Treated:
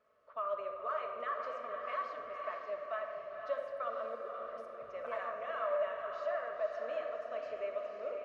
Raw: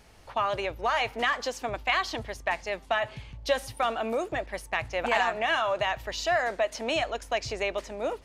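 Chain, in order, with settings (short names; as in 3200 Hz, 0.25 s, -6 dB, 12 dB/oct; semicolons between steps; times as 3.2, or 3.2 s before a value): 4.15–4.93 negative-ratio compressor -36 dBFS, ratio -0.5; double band-pass 830 Hz, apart 1 oct; diffused feedback echo 0.511 s, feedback 45%, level -5 dB; reverb RT60 1.7 s, pre-delay 5 ms, DRR 2.5 dB; gain -6 dB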